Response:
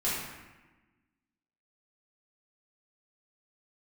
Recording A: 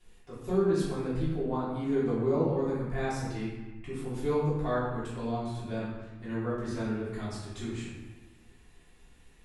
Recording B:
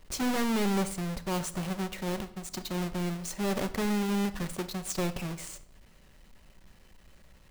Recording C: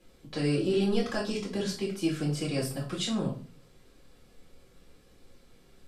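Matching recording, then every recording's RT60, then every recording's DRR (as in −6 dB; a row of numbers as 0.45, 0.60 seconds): A; 1.2, 0.70, 0.40 seconds; −10.5, 10.5, −5.0 decibels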